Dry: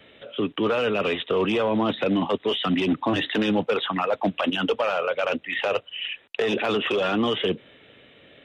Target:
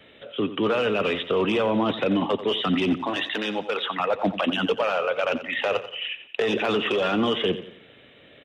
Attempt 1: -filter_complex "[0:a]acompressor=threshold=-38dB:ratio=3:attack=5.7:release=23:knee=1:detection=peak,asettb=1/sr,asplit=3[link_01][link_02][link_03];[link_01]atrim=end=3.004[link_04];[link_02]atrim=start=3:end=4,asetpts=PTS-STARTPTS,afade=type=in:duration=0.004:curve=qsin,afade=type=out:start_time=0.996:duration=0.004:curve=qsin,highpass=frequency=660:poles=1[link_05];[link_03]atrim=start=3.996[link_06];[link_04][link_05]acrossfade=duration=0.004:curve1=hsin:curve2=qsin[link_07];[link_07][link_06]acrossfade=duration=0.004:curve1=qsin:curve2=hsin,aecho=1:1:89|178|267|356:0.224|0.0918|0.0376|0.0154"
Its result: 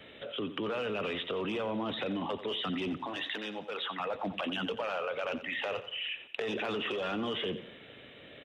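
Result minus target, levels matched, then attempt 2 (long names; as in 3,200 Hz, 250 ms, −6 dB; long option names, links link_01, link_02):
downward compressor: peak gain reduction +14 dB
-filter_complex "[0:a]asettb=1/sr,asplit=3[link_01][link_02][link_03];[link_01]atrim=end=3.004[link_04];[link_02]atrim=start=3:end=4,asetpts=PTS-STARTPTS,afade=type=in:duration=0.004:curve=qsin,afade=type=out:start_time=0.996:duration=0.004:curve=qsin,highpass=frequency=660:poles=1[link_05];[link_03]atrim=start=3.996[link_06];[link_04][link_05]acrossfade=duration=0.004:curve1=hsin:curve2=qsin[link_07];[link_07][link_06]acrossfade=duration=0.004:curve1=qsin:curve2=hsin,aecho=1:1:89|178|267|356:0.224|0.0918|0.0376|0.0154"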